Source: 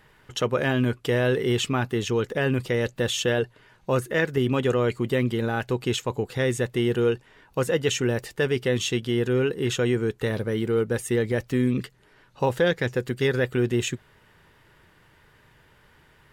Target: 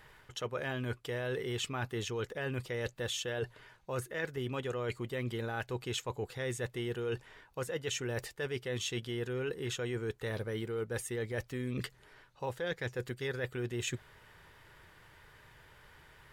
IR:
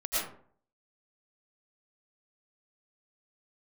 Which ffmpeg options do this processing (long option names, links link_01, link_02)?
-af "equalizer=frequency=230:width=0.92:gain=-7,bandreject=frequency=2800:width=28,areverse,acompressor=threshold=-34dB:ratio=6,areverse"